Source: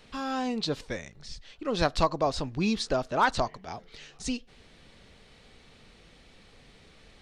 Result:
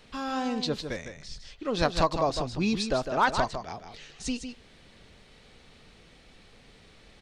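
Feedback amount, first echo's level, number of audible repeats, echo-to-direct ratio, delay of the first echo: no steady repeat, -8.0 dB, 1, -8.0 dB, 0.155 s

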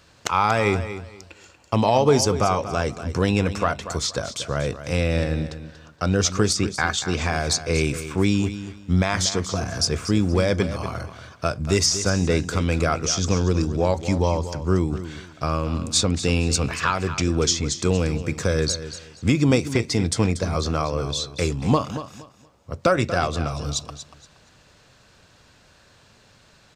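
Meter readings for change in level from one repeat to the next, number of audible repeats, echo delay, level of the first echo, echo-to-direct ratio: -12.5 dB, 2, 0.236 s, -12.0 dB, -11.5 dB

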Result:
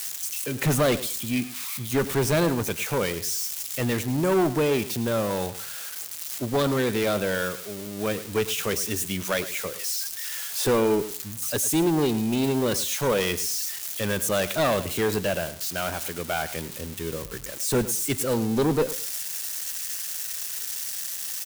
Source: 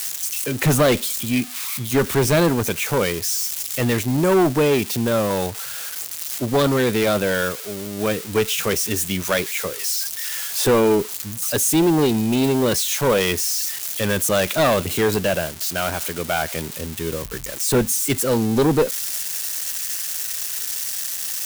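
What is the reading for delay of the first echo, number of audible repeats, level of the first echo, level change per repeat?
0.105 s, 2, -15.0 dB, -13.5 dB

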